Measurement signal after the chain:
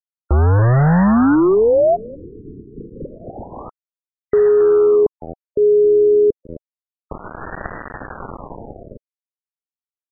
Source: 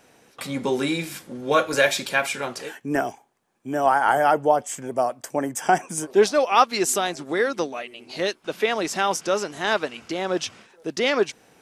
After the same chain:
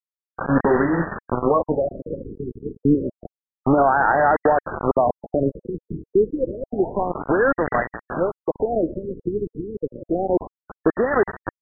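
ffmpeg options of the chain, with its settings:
-filter_complex "[0:a]asplit=4[s0][s1][s2][s3];[s1]adelay=268,afreqshift=-82,volume=0.126[s4];[s2]adelay=536,afreqshift=-164,volume=0.0519[s5];[s3]adelay=804,afreqshift=-246,volume=0.0211[s6];[s0][s4][s5][s6]amix=inputs=4:normalize=0,acrossover=split=3000[s7][s8];[s8]acompressor=mode=upward:threshold=0.00282:ratio=2.5[s9];[s7][s9]amix=inputs=2:normalize=0,aemphasis=mode=production:type=75kf,acompressor=threshold=0.0398:ratio=2.5,aresample=16000,acrusher=bits=4:mix=0:aa=0.000001,aresample=44100,alimiter=level_in=10:limit=0.891:release=50:level=0:latency=1,afftfilt=real='re*lt(b*sr/1024,450*pow(2000/450,0.5+0.5*sin(2*PI*0.29*pts/sr)))':imag='im*lt(b*sr/1024,450*pow(2000/450,0.5+0.5*sin(2*PI*0.29*pts/sr)))':win_size=1024:overlap=0.75,volume=0.501"

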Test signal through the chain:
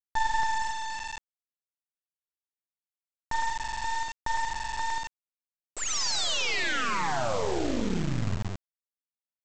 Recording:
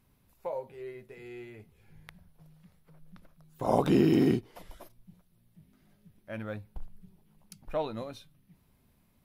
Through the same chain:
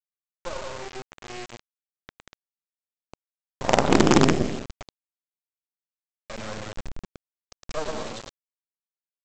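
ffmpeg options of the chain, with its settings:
-af "tremolo=f=23:d=0.519,aecho=1:1:110|187|240.9|278.6|305:0.631|0.398|0.251|0.158|0.1,aresample=16000,acrusher=bits=4:dc=4:mix=0:aa=0.000001,aresample=44100,volume=2.24"

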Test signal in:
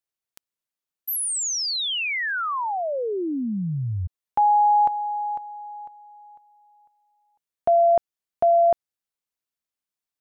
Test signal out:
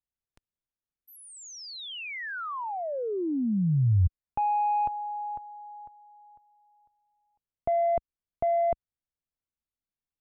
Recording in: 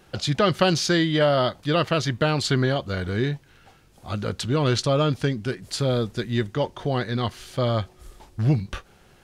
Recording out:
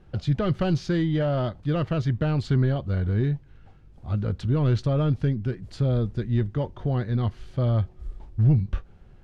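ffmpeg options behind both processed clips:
-af "asoftclip=type=tanh:threshold=0.224,aemphasis=mode=reproduction:type=riaa,volume=0.422"

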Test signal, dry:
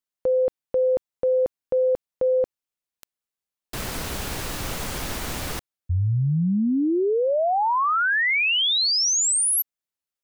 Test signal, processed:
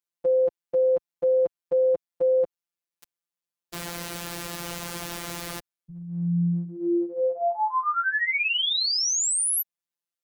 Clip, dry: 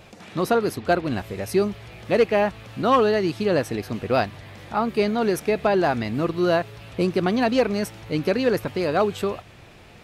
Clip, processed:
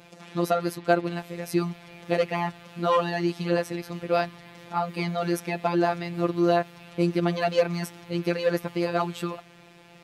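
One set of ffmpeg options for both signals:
-af "afftfilt=real='hypot(re,im)*cos(PI*b)':imag='0':win_size=1024:overlap=0.75,highpass=f=75:p=1"

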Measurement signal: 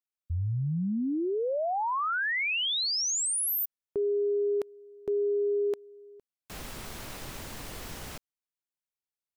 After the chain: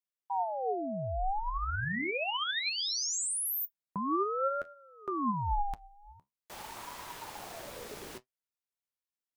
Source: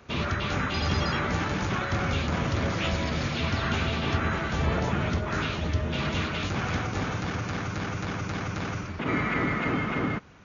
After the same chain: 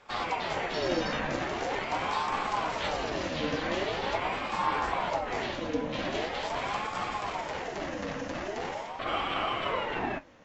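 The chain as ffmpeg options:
-af "flanger=delay=7:depth=6.9:regen=59:speed=0.72:shape=triangular,aeval=exprs='val(0)*sin(2*PI*680*n/s+680*0.45/0.43*sin(2*PI*0.43*n/s))':c=same,volume=1.41"

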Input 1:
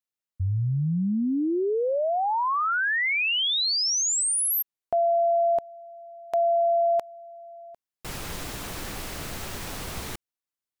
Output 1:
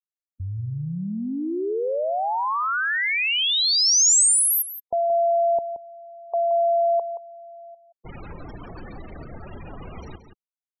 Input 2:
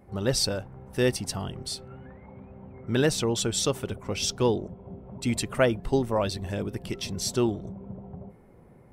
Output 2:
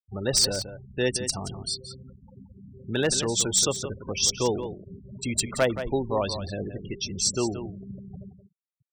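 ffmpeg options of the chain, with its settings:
-filter_complex "[0:a]afftfilt=real='re*gte(hypot(re,im),0.0282)':imag='im*gte(hypot(re,im),0.0282)':win_size=1024:overlap=0.75,equalizer=f=7300:t=o:w=1.4:g=8.5,acrossover=split=390[s0][s1];[s0]acompressor=threshold=0.0141:ratio=1.5:attack=7.5:release=44:knee=2.83:detection=peak[s2];[s2][s1]amix=inputs=2:normalize=0,aeval=exprs='0.224*(abs(mod(val(0)/0.224+3,4)-2)-1)':c=same,asplit=2[s3][s4];[s4]adelay=174.9,volume=0.316,highshelf=f=4000:g=-3.94[s5];[s3][s5]amix=inputs=2:normalize=0"

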